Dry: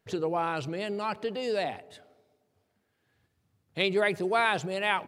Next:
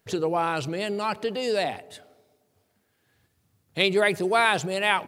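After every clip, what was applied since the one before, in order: high shelf 5800 Hz +8.5 dB; gain +4 dB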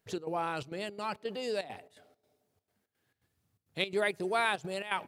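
step gate "xx.xxxx.xx." 168 bpm -12 dB; gain -8.5 dB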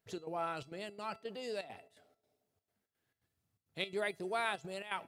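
resonator 670 Hz, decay 0.27 s, mix 70%; gain +3.5 dB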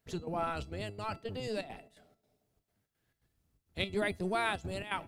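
octaver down 1 oct, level +4 dB; gain +3 dB

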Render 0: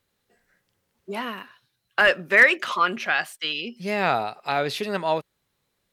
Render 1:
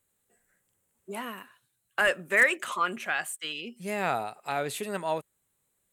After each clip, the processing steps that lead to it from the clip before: resonant high shelf 6400 Hz +8 dB, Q 3; gain -6 dB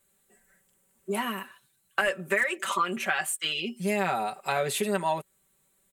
comb 5.2 ms, depth 80%; compressor 8:1, threshold -27 dBFS, peak gain reduction 13.5 dB; gain +4.5 dB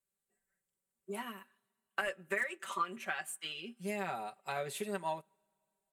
two-slope reverb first 0.27 s, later 2.7 s, from -20 dB, DRR 16.5 dB; upward expander 1.5:1, over -48 dBFS; gain -8 dB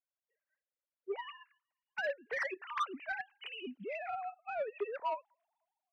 sine-wave speech; soft clip -29.5 dBFS, distortion -13 dB; gain +1.5 dB

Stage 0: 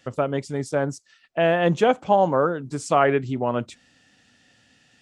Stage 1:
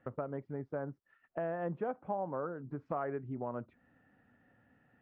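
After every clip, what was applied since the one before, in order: LPF 1600 Hz 24 dB/oct; compressor 2.5:1, threshold -35 dBFS, peak gain reduction 14.5 dB; gain -5 dB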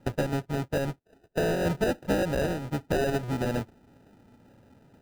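half-waves squared off; sample-rate reducer 1100 Hz, jitter 0%; high shelf 2300 Hz -8 dB; gain +7.5 dB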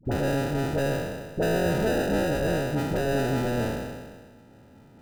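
spectral trails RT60 1.56 s; limiter -19.5 dBFS, peak gain reduction 6 dB; dispersion highs, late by 52 ms, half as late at 680 Hz; gain +1 dB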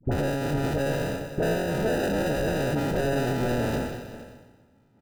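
limiter -23 dBFS, peak gain reduction 11 dB; on a send: echo 0.459 s -9.5 dB; on the sum: three-band expander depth 70%; gain +5 dB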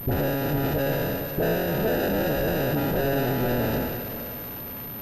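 zero-crossing step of -34 dBFS; pulse-width modulation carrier 13000 Hz

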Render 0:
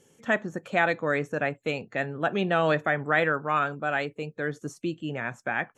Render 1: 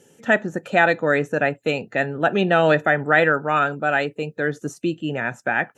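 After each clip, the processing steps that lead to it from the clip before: notch comb 1100 Hz; gain +7.5 dB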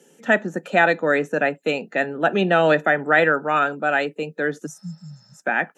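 spectral repair 4.69–5.37, 210–5600 Hz after; steep high-pass 160 Hz 48 dB/oct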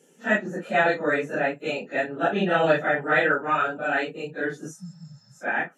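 phase scrambler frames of 0.1 s; gain -4 dB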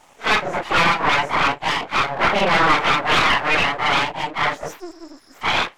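full-wave rectifier; overdrive pedal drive 22 dB, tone 1900 Hz, clips at -7 dBFS; gain +2 dB

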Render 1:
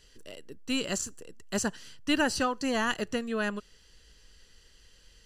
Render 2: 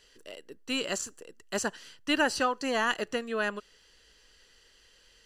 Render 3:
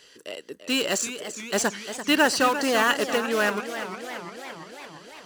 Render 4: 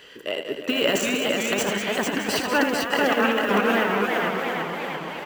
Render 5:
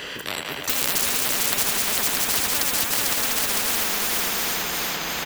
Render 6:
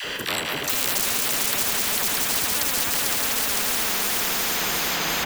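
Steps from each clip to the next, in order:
tone controls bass -12 dB, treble -4 dB; gain +2 dB
in parallel at -10 dB: wrapped overs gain 27 dB; on the sum: HPF 130 Hz 12 dB/oct; warbling echo 0.343 s, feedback 69%, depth 152 cents, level -11 dB; gain +6 dB
band shelf 6700 Hz -12.5 dB; negative-ratio compressor -27 dBFS, ratio -0.5; on a send: tapped delay 79/193/448/613/655 ms -8/-8.5/-3.5/-12/-18 dB; on the sum: gain +4.5 dB
echo 0.62 s -8.5 dB; spectral noise reduction 9 dB; spectral compressor 10:1; gain +7 dB
in parallel at -2 dB: negative-ratio compressor -28 dBFS, ratio -1; on the sum: dispersion lows, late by 48 ms, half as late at 580 Hz; bit-crush 7-bit; gain -3.5 dB

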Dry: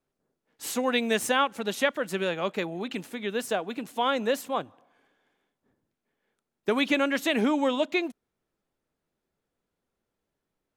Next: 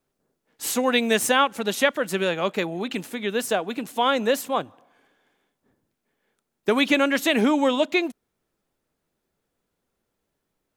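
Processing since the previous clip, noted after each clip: high shelf 6500 Hz +4 dB; gain +4.5 dB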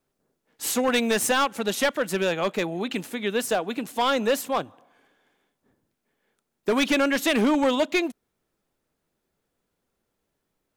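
hard clip -16.5 dBFS, distortion -12 dB

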